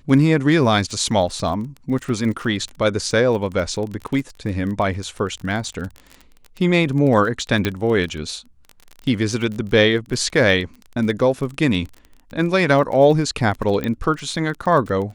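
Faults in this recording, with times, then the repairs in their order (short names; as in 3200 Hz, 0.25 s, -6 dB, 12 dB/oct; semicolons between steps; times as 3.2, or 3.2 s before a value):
crackle 25/s -27 dBFS
7.65 pop -7 dBFS
13.84 pop -11 dBFS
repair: de-click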